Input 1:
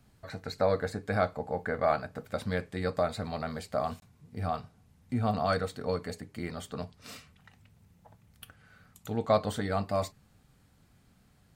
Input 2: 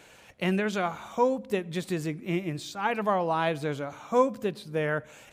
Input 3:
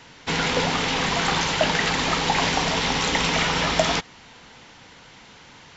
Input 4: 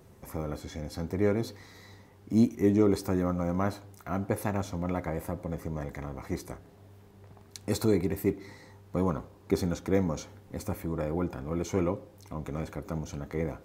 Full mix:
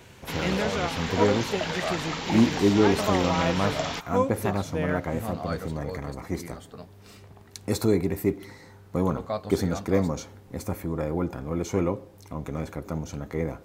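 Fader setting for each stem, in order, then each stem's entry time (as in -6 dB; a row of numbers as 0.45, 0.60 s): -5.5, -2.0, -10.0, +3.0 dB; 0.00, 0.00, 0.00, 0.00 s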